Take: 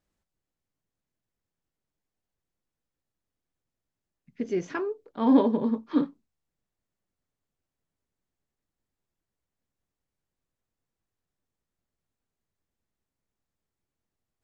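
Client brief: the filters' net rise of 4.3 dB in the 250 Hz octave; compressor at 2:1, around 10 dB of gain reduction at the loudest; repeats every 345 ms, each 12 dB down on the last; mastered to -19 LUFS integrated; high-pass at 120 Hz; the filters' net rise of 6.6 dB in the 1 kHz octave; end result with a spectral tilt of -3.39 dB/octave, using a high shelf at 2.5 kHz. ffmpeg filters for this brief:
-af "highpass=120,equalizer=f=250:t=o:g=4.5,equalizer=f=1000:t=o:g=6.5,highshelf=f=2500:g=5,acompressor=threshold=0.0355:ratio=2,aecho=1:1:345|690|1035:0.251|0.0628|0.0157,volume=3.35"

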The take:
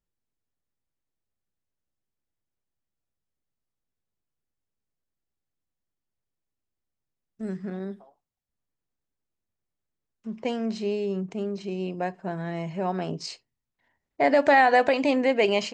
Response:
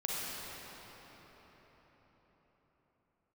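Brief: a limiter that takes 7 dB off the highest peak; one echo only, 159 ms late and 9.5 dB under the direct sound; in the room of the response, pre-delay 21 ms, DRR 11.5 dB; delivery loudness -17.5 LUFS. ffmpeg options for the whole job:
-filter_complex "[0:a]alimiter=limit=0.158:level=0:latency=1,aecho=1:1:159:0.335,asplit=2[s0][s1];[1:a]atrim=start_sample=2205,adelay=21[s2];[s1][s2]afir=irnorm=-1:irlink=0,volume=0.141[s3];[s0][s3]amix=inputs=2:normalize=0,volume=3.35"

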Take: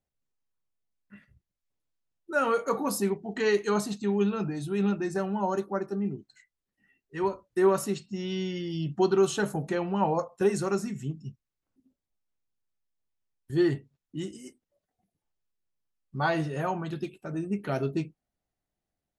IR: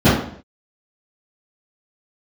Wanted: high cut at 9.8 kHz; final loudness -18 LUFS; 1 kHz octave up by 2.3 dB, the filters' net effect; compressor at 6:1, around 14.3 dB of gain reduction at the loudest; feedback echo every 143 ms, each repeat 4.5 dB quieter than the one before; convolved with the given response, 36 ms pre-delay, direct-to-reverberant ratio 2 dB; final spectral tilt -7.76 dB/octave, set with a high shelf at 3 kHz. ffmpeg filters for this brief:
-filter_complex "[0:a]lowpass=9800,equalizer=f=1000:t=o:g=3.5,highshelf=f=3000:g=-5,acompressor=threshold=0.02:ratio=6,aecho=1:1:143|286|429|572|715|858|1001|1144|1287:0.596|0.357|0.214|0.129|0.0772|0.0463|0.0278|0.0167|0.01,asplit=2[s0][s1];[1:a]atrim=start_sample=2205,adelay=36[s2];[s1][s2]afir=irnorm=-1:irlink=0,volume=0.0422[s3];[s0][s3]amix=inputs=2:normalize=0,volume=3.16"

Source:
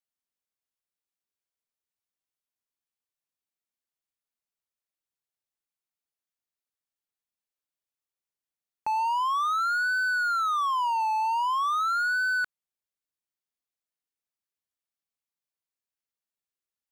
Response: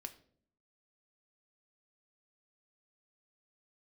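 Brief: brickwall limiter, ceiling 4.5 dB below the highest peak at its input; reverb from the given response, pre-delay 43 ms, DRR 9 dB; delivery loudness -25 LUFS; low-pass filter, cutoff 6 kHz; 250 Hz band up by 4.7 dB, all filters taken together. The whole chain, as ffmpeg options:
-filter_complex "[0:a]lowpass=6000,equalizer=f=250:t=o:g=6,alimiter=level_in=1.12:limit=0.0631:level=0:latency=1,volume=0.891,asplit=2[s0][s1];[1:a]atrim=start_sample=2205,adelay=43[s2];[s1][s2]afir=irnorm=-1:irlink=0,volume=0.596[s3];[s0][s3]amix=inputs=2:normalize=0,volume=1.5"

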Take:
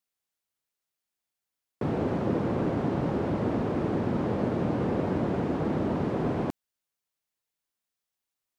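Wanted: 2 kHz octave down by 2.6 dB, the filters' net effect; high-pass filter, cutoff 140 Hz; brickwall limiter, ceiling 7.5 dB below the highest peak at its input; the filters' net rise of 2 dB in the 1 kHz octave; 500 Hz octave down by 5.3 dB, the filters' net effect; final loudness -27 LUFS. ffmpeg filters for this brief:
-af "highpass=140,equalizer=f=500:t=o:g=-8.5,equalizer=f=1000:t=o:g=7,equalizer=f=2000:t=o:g=-6,volume=2.51,alimiter=limit=0.126:level=0:latency=1"

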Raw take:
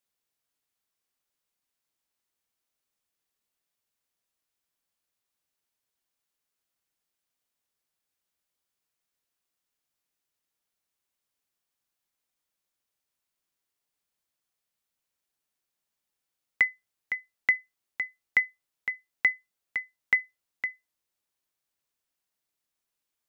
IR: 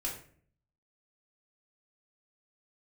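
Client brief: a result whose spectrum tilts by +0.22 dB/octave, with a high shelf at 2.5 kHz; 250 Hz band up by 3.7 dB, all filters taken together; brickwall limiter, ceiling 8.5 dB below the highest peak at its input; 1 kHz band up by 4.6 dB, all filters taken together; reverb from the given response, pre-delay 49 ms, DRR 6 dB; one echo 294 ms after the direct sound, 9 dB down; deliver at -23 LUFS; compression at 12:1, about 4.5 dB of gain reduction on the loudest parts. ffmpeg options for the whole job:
-filter_complex "[0:a]equalizer=f=250:t=o:g=4.5,equalizer=f=1000:t=o:g=7,highshelf=f=2500:g=-6.5,acompressor=threshold=0.0708:ratio=12,alimiter=limit=0.106:level=0:latency=1,aecho=1:1:294:0.355,asplit=2[s0][s1];[1:a]atrim=start_sample=2205,adelay=49[s2];[s1][s2]afir=irnorm=-1:irlink=0,volume=0.398[s3];[s0][s3]amix=inputs=2:normalize=0,volume=4.47"

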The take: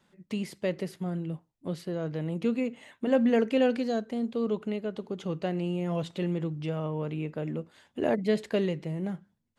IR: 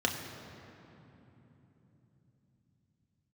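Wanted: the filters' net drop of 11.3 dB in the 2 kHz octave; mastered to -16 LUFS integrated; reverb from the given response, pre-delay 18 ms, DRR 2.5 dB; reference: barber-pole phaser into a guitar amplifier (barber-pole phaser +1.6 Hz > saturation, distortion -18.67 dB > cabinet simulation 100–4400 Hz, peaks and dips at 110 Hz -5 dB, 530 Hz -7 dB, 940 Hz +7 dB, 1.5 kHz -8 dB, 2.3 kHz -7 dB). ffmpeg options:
-filter_complex "[0:a]equalizer=f=2000:t=o:g=-8.5,asplit=2[s0][s1];[1:a]atrim=start_sample=2205,adelay=18[s2];[s1][s2]afir=irnorm=-1:irlink=0,volume=0.282[s3];[s0][s3]amix=inputs=2:normalize=0,asplit=2[s4][s5];[s5]afreqshift=1.6[s6];[s4][s6]amix=inputs=2:normalize=1,asoftclip=threshold=0.126,highpass=100,equalizer=f=110:t=q:w=4:g=-5,equalizer=f=530:t=q:w=4:g=-7,equalizer=f=940:t=q:w=4:g=7,equalizer=f=1500:t=q:w=4:g=-8,equalizer=f=2300:t=q:w=4:g=-7,lowpass=f=4400:w=0.5412,lowpass=f=4400:w=1.3066,volume=7.5"

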